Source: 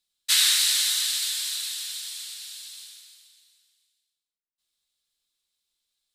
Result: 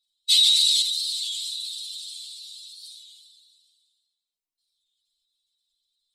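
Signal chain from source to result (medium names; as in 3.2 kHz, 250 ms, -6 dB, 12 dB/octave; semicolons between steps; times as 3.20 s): spectral contrast enhancement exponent 2.2; 0.82–2.84 s: flange 1.8 Hz, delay 9.5 ms, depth 7.2 ms, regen -70%; Butterworth band-stop 1.6 kHz, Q 1.3; warped record 33 1/3 rpm, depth 100 cents; trim +3 dB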